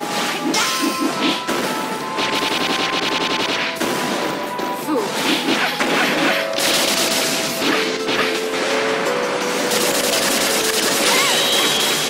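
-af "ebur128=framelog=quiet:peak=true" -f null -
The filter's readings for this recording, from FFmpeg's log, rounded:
Integrated loudness:
  I:         -17.5 LUFS
  Threshold: -27.5 LUFS
Loudness range:
  LRA:         3.0 LU
  Threshold: -37.8 LUFS
  LRA low:   -19.3 LUFS
  LRA high:  -16.3 LUFS
True peak:
  Peak:       -3.4 dBFS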